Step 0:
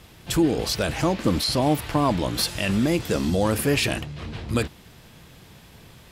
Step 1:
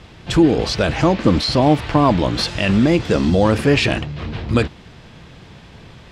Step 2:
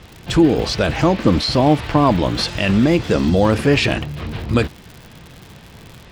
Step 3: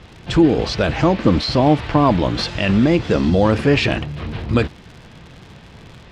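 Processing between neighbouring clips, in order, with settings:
high-frequency loss of the air 110 metres; level +7.5 dB
surface crackle 110 per second −29 dBFS
high-frequency loss of the air 68 metres

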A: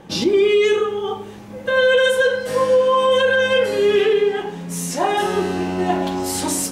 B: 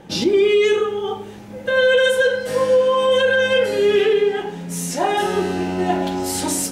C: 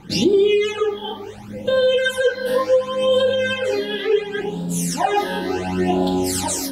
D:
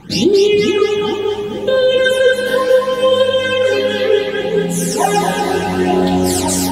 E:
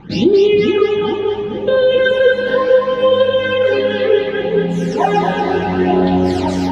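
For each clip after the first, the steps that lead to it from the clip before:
notch filter 1,100 Hz, Q 8.1
downward compressor, threshold −16 dBFS, peak gain reduction 5 dB; all-pass phaser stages 12, 0.7 Hz, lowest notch 120–2,100 Hz; level +4 dB
echo with a time of its own for lows and highs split 560 Hz, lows 429 ms, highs 234 ms, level −4 dB; level +4 dB
high-frequency loss of the air 250 metres; level +1 dB

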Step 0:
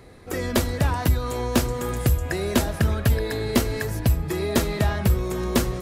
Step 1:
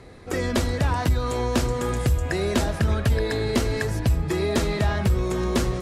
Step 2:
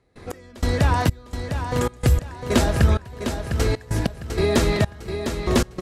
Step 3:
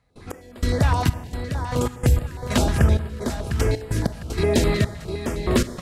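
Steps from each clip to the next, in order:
low-pass filter 8,800 Hz 12 dB per octave; brickwall limiter −15 dBFS, peak gain reduction 5 dB; level +2 dB
gate pattern ".x..xxx....x" 96 BPM −24 dB; repeating echo 704 ms, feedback 33%, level −8 dB; level +4 dB
four-comb reverb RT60 1.6 s, combs from 25 ms, DRR 13 dB; notch on a step sequencer 9.7 Hz 370–6,000 Hz

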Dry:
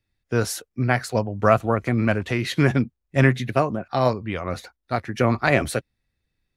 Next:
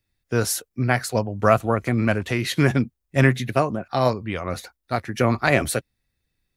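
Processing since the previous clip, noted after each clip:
high-shelf EQ 7,100 Hz +9 dB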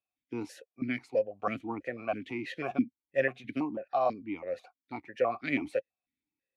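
formant filter that steps through the vowels 6.1 Hz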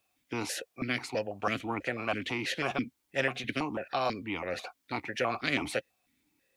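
every bin compressed towards the loudest bin 2 to 1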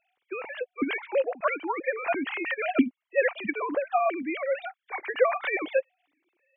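three sine waves on the formant tracks
level +5.5 dB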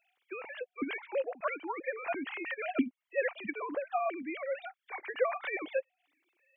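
one half of a high-frequency compander encoder only
level −7.5 dB

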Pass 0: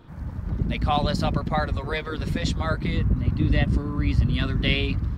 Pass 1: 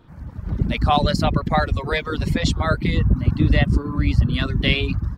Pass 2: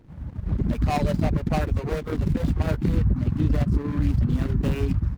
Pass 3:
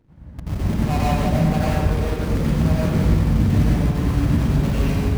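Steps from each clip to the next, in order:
reverb reduction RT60 0.63 s; automatic gain control gain up to 9.5 dB; level −2 dB
running median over 41 samples; brickwall limiter −13.5 dBFS, peak gain reduction 9.5 dB
in parallel at −4 dB: bit reduction 4 bits; on the sum: convolution reverb RT60 1.4 s, pre-delay 86 ms, DRR −6 dB; level −7.5 dB

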